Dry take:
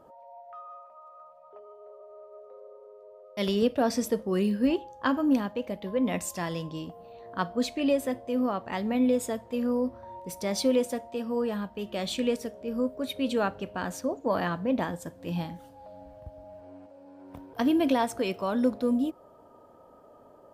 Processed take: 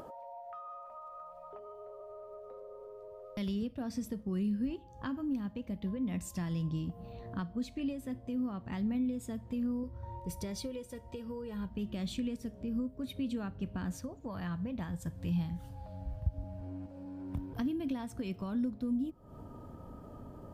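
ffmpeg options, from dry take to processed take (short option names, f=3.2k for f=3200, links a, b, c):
-filter_complex "[0:a]asettb=1/sr,asplit=3[a][b][c];[a]atrim=end=9.834[d];[b]atrim=start=9.83:end=11.69,asetpts=PTS-STARTPTS,afade=t=in:d=0.004:c=qsin,afade=t=out:st=1.856:d=0.004:c=qsin,aecho=1:1:2.1:0.62,atrim=end_sample=82026[e];[c]atrim=start=11.686[f];[d][e]acrossfade=d=0.004:c1=hsin:c2=qsin[g];[g][f]acrossfade=d=0.004:c1=qsin:c2=hsin,asettb=1/sr,asplit=3[h][i][j];[h]atrim=end=13.974[k];[i]atrim=start=13.97:end=16.34,asetpts=PTS-STARTPTS,afade=t=in:d=0.004:c=qsin,afade=t=out:st=2.366:d=0.004:c=qsin,equalizer=f=270:t=o:w=1.2:g=-8.5[l];[j]atrim=start=16.336[m];[k][l]acrossfade=d=0.004:c1=hsin:c2=qsin[n];[n][m]acrossfade=d=0.004:c1=qsin:c2=hsin,acompressor=threshold=-44dB:ratio=3,asubboost=boost=9:cutoff=180,acompressor=mode=upward:threshold=-42dB:ratio=2.5"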